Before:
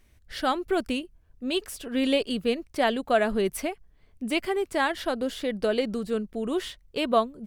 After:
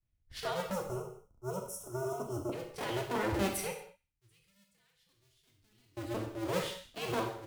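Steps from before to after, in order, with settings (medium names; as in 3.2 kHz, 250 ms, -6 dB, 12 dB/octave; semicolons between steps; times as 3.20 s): cycle switcher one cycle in 2, inverted; peak limiter -21 dBFS, peak gain reduction 11 dB; 0.73–2.52 s: time-frequency box 1.5–5.2 kHz -24 dB; 3.71–5.97 s: amplifier tone stack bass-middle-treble 6-0-2; feedback echo behind a high-pass 67 ms, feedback 42%, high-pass 1.5 kHz, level -15 dB; gated-style reverb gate 270 ms falling, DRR 0.5 dB; three bands expanded up and down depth 70%; trim -8 dB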